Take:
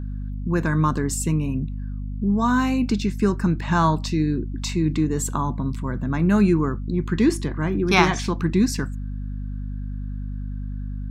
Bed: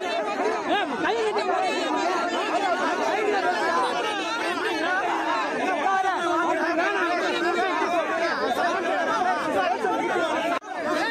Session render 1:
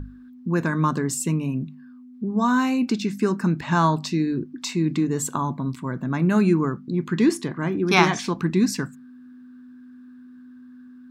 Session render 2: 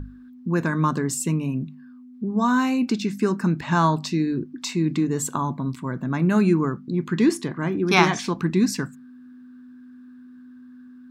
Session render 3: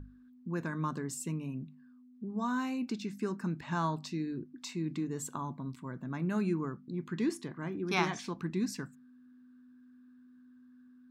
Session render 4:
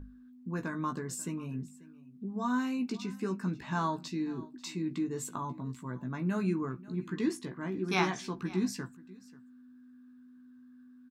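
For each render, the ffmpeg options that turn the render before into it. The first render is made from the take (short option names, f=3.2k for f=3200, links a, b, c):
-af "bandreject=f=50:t=h:w=6,bandreject=f=100:t=h:w=6,bandreject=f=150:t=h:w=6,bandreject=f=200:t=h:w=6"
-af anull
-af "volume=-13dB"
-filter_complex "[0:a]asplit=2[a][b];[b]adelay=16,volume=-6dB[c];[a][c]amix=inputs=2:normalize=0,aecho=1:1:538:0.0944"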